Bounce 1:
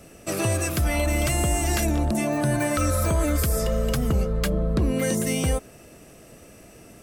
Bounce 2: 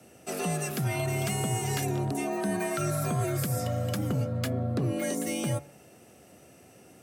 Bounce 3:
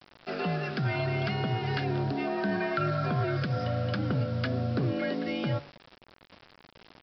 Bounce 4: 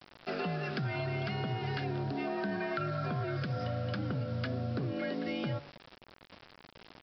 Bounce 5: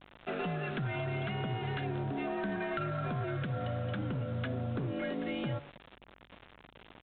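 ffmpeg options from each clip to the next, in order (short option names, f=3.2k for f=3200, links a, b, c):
-af "afreqshift=64,bandreject=f=143:t=h:w=4,bandreject=f=286:t=h:w=4,bandreject=f=429:t=h:w=4,bandreject=f=572:t=h:w=4,bandreject=f=715:t=h:w=4,bandreject=f=858:t=h:w=4,bandreject=f=1.001k:t=h:w=4,bandreject=f=1.144k:t=h:w=4,bandreject=f=1.287k:t=h:w=4,bandreject=f=1.43k:t=h:w=4,bandreject=f=1.573k:t=h:w=4,bandreject=f=1.716k:t=h:w=4,bandreject=f=1.859k:t=h:w=4,bandreject=f=2.002k:t=h:w=4,bandreject=f=2.145k:t=h:w=4,bandreject=f=2.288k:t=h:w=4,bandreject=f=2.431k:t=h:w=4,volume=-6.5dB"
-af "equalizer=f=1.5k:w=4.8:g=9,aresample=11025,acrusher=bits=7:mix=0:aa=0.000001,aresample=44100"
-af "acompressor=threshold=-32dB:ratio=4"
-af "aresample=8000,aeval=exprs='clip(val(0),-1,0.0282)':c=same,aresample=44100,aeval=exprs='val(0)+0.000447*(sin(2*PI*50*n/s)+sin(2*PI*2*50*n/s)/2+sin(2*PI*3*50*n/s)/3+sin(2*PI*4*50*n/s)/4+sin(2*PI*5*50*n/s)/5)':c=same"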